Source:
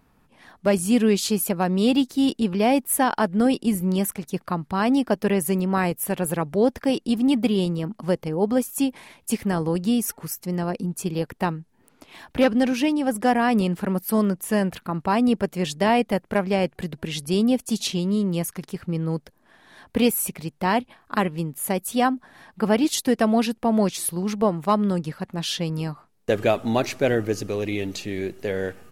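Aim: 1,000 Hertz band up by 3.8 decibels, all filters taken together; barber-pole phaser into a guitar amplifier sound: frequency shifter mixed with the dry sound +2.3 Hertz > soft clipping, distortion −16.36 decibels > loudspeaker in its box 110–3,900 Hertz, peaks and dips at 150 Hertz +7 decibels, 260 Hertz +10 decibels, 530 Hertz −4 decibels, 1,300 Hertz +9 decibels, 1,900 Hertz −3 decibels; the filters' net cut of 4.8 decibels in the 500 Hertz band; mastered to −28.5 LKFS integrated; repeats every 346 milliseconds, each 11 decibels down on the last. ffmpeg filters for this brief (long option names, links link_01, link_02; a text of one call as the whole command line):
ffmpeg -i in.wav -filter_complex "[0:a]equalizer=frequency=500:width_type=o:gain=-6.5,equalizer=frequency=1000:width_type=o:gain=5,aecho=1:1:346|692|1038:0.282|0.0789|0.0221,asplit=2[link_01][link_02];[link_02]afreqshift=2.3[link_03];[link_01][link_03]amix=inputs=2:normalize=1,asoftclip=threshold=-18dB,highpass=110,equalizer=frequency=150:width_type=q:width=4:gain=7,equalizer=frequency=260:width_type=q:width=4:gain=10,equalizer=frequency=530:width_type=q:width=4:gain=-4,equalizer=frequency=1300:width_type=q:width=4:gain=9,equalizer=frequency=1900:width_type=q:width=4:gain=-3,lowpass=frequency=3900:width=0.5412,lowpass=frequency=3900:width=1.3066,volume=-4dB" out.wav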